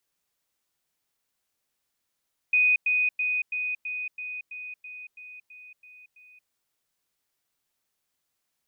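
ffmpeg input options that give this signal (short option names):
-f lavfi -i "aevalsrc='pow(10,(-17.5-3*floor(t/0.33))/20)*sin(2*PI*2490*t)*clip(min(mod(t,0.33),0.23-mod(t,0.33))/0.005,0,1)':d=3.96:s=44100"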